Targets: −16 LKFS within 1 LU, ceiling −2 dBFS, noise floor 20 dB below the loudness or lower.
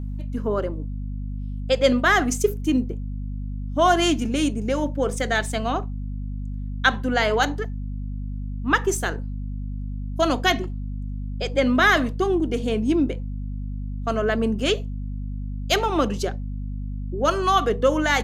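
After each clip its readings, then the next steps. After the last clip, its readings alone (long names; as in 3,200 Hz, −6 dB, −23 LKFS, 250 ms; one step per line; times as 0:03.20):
mains hum 50 Hz; hum harmonics up to 250 Hz; level of the hum −27 dBFS; integrated loudness −24.0 LKFS; sample peak −3.5 dBFS; target loudness −16.0 LKFS
→ mains-hum notches 50/100/150/200/250 Hz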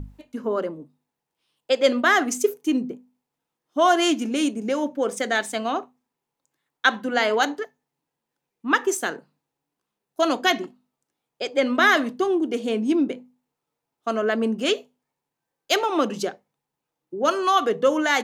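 mains hum none found; integrated loudness −23.0 LKFS; sample peak −4.0 dBFS; target loudness −16.0 LKFS
→ level +7 dB
brickwall limiter −2 dBFS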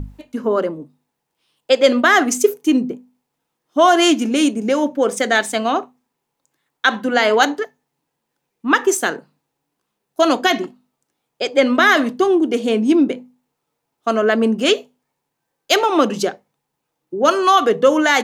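integrated loudness −16.5 LKFS; sample peak −2.0 dBFS; background noise floor −77 dBFS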